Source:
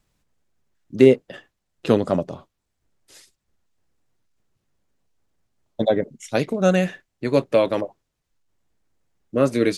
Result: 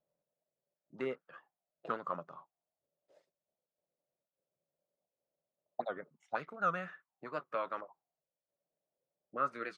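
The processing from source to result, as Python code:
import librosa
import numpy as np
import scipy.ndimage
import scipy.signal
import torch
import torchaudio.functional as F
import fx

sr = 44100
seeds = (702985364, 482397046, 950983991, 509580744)

y = fx.peak_eq(x, sr, hz=160.0, db=11.5, octaves=0.53)
y = fx.auto_wah(y, sr, base_hz=580.0, top_hz=1300.0, q=7.3, full_db=-18.5, direction='up')
y = fx.record_warp(y, sr, rpm=78.0, depth_cents=160.0)
y = y * 10.0 ** (1.0 / 20.0)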